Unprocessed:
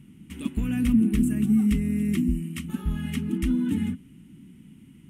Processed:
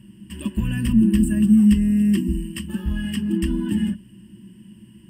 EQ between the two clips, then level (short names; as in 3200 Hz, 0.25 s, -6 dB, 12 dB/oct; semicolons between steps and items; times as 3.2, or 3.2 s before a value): ripple EQ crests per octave 1.3, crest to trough 15 dB; +1.5 dB